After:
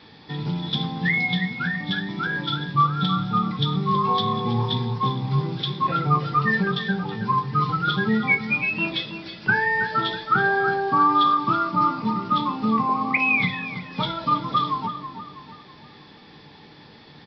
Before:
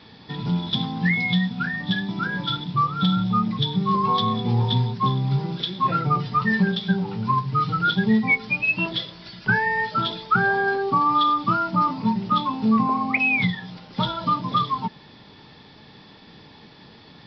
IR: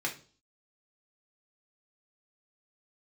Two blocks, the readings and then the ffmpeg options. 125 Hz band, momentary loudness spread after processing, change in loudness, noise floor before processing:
−1.5 dB, 8 LU, −0.5 dB, −48 dBFS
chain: -filter_complex "[0:a]asplit=2[link_01][link_02];[link_02]adelay=324,lowpass=frequency=2000:poles=1,volume=-9dB,asplit=2[link_03][link_04];[link_04]adelay=324,lowpass=frequency=2000:poles=1,volume=0.46,asplit=2[link_05][link_06];[link_06]adelay=324,lowpass=frequency=2000:poles=1,volume=0.46,asplit=2[link_07][link_08];[link_08]adelay=324,lowpass=frequency=2000:poles=1,volume=0.46,asplit=2[link_09][link_10];[link_10]adelay=324,lowpass=frequency=2000:poles=1,volume=0.46[link_11];[link_01][link_03][link_05][link_07][link_09][link_11]amix=inputs=6:normalize=0,asplit=2[link_12][link_13];[1:a]atrim=start_sample=2205[link_14];[link_13][link_14]afir=irnorm=-1:irlink=0,volume=-8dB[link_15];[link_12][link_15]amix=inputs=2:normalize=0,volume=-3.5dB"

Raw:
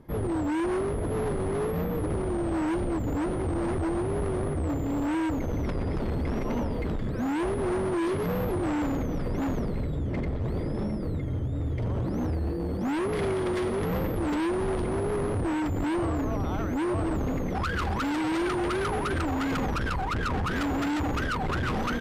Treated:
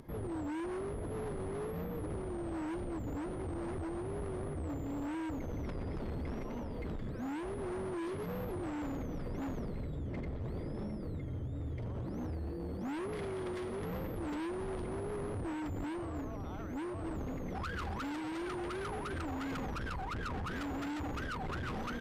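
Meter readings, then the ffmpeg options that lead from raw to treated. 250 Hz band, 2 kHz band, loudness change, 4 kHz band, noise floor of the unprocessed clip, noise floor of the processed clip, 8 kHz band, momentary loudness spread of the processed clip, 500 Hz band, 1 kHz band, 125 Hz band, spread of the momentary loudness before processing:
−11.0 dB, −11.0 dB, −11.0 dB, −11.0 dB, −30 dBFS, −40 dBFS, −11.0 dB, 2 LU, −11.0 dB, −11.0 dB, −10.5 dB, 3 LU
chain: -af "alimiter=level_in=5dB:limit=-24dB:level=0:latency=1,volume=-5dB,acompressor=mode=upward:threshold=-41dB:ratio=2.5,volume=-6.5dB"

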